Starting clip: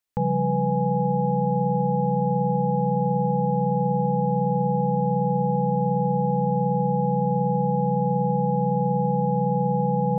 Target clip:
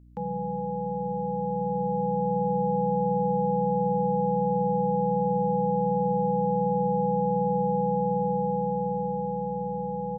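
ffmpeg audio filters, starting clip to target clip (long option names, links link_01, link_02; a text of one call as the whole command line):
ffmpeg -i in.wav -filter_complex "[0:a]highpass=frequency=170:width=0.5412,highpass=frequency=170:width=1.3066,dynaudnorm=framelen=330:gausssize=11:maxgain=6dB,aeval=exprs='val(0)+0.00631*(sin(2*PI*60*n/s)+sin(2*PI*2*60*n/s)/2+sin(2*PI*3*60*n/s)/3+sin(2*PI*4*60*n/s)/4+sin(2*PI*5*60*n/s)/5)':channel_layout=same,asplit=2[link_01][link_02];[link_02]aecho=0:1:415:0.126[link_03];[link_01][link_03]amix=inputs=2:normalize=0,volume=-7dB" out.wav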